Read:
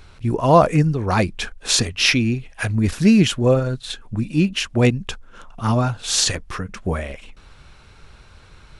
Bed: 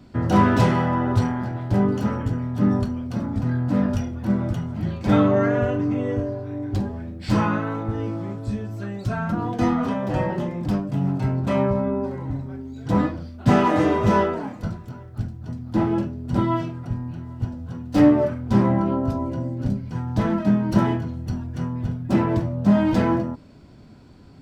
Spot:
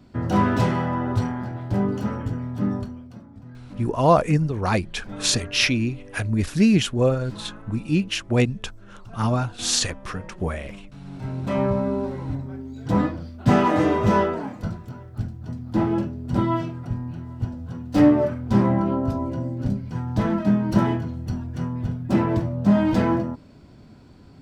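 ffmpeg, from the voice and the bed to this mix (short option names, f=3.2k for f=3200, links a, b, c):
-filter_complex "[0:a]adelay=3550,volume=-3.5dB[a];[1:a]volume=15.5dB,afade=t=out:st=2.5:d=0.74:silence=0.158489,afade=t=in:st=11.04:d=0.65:silence=0.11885[b];[a][b]amix=inputs=2:normalize=0"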